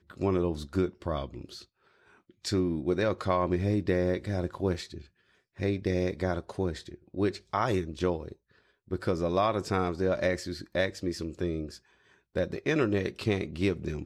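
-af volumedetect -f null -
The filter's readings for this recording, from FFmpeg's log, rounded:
mean_volume: -30.6 dB
max_volume: -13.0 dB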